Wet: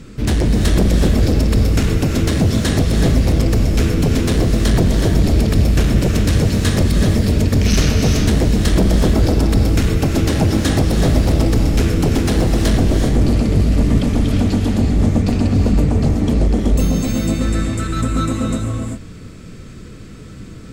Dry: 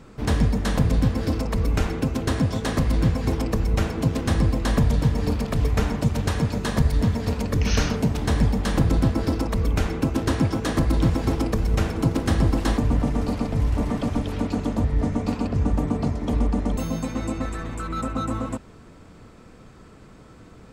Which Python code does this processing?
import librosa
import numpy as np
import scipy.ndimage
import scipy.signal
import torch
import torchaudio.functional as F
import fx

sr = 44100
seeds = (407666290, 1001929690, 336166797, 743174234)

y = fx.peak_eq(x, sr, hz=850.0, db=-15.0, octaves=1.4)
y = fx.fold_sine(y, sr, drive_db=13, ceiling_db=-6.0)
y = fx.rev_gated(y, sr, seeds[0], gate_ms=420, shape='rising', drr_db=2.0)
y = y * 10.0 ** (-5.5 / 20.0)